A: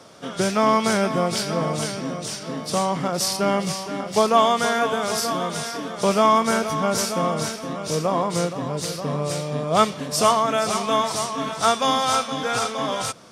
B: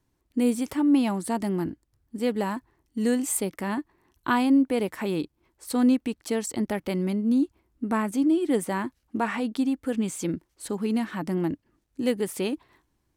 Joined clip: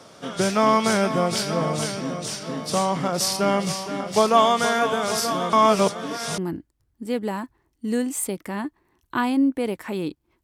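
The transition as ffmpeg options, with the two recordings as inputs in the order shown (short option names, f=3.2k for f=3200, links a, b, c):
-filter_complex "[0:a]apad=whole_dur=10.43,atrim=end=10.43,asplit=2[a][b];[a]atrim=end=5.532[c];[b]atrim=start=5.528:end=6.382,asetpts=PTS-STARTPTS,areverse[d];[1:a]atrim=start=1.508:end=5.56[e];[c][d]acrossfade=d=0.004:c1=hsin:c2=hsin[f];[f][e]acrossfade=d=0.004:c1=hsin:c2=hsin"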